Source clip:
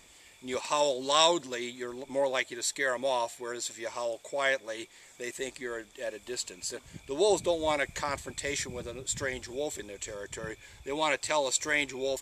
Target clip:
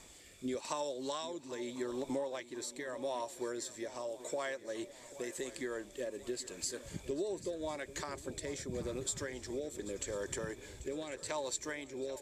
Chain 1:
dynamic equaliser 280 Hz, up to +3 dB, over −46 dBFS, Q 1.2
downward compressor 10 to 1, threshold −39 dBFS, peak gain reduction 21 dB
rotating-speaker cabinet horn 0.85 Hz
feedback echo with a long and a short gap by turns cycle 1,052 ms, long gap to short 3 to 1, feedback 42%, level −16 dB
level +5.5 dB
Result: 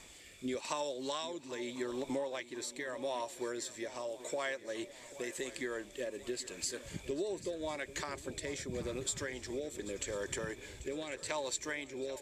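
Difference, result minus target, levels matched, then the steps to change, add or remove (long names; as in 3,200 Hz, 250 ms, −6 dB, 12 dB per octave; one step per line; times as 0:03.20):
2,000 Hz band +3.0 dB
add after downward compressor: parametric band 2,500 Hz −5.5 dB 1.2 octaves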